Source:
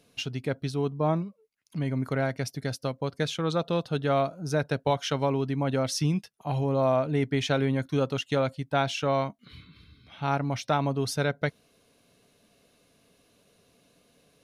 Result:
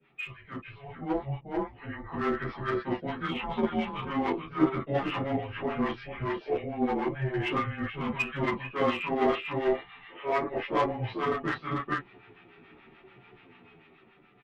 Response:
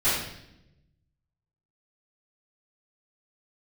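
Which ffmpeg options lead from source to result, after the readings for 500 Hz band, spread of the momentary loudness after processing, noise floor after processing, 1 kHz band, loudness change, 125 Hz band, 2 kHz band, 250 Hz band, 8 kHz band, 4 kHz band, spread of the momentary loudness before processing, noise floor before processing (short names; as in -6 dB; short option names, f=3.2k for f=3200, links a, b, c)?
-3.0 dB, 10 LU, -58 dBFS, -0.5 dB, -2.5 dB, -8.0 dB, +1.0 dB, -1.0 dB, under -20 dB, -6.5 dB, 7 LU, -66 dBFS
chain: -filter_complex "[0:a]aecho=1:1:444:0.376,areverse,acompressor=threshold=-37dB:ratio=8,areverse[a];[1:a]atrim=start_sample=2205,atrim=end_sample=3528[b];[a][b]afir=irnorm=-1:irlink=0,highpass=f=510:t=q:w=0.5412,highpass=f=510:t=q:w=1.307,lowpass=f=3k:t=q:w=0.5176,lowpass=f=3k:t=q:w=0.7071,lowpass=f=3k:t=q:w=1.932,afreqshift=-290,asplit=2[c][d];[d]acrusher=bits=3:mix=0:aa=0.5,volume=-8dB[e];[c][e]amix=inputs=2:normalize=0,dynaudnorm=f=180:g=13:m=8dB,acrossover=split=830[f][g];[f]aeval=exprs='val(0)*(1-0.7/2+0.7/2*cos(2*PI*6.9*n/s))':c=same[h];[g]aeval=exprs='val(0)*(1-0.7/2-0.7/2*cos(2*PI*6.9*n/s))':c=same[i];[h][i]amix=inputs=2:normalize=0,asplit=2[j][k];[k]adelay=10,afreqshift=-0.86[l];[j][l]amix=inputs=2:normalize=1"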